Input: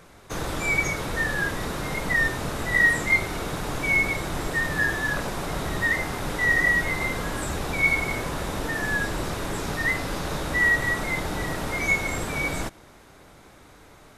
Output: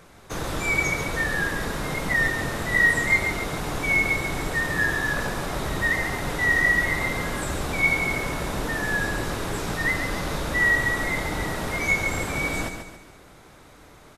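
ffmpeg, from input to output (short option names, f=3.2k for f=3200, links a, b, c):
-af "aecho=1:1:139|278|417|556|695:0.422|0.181|0.078|0.0335|0.0144"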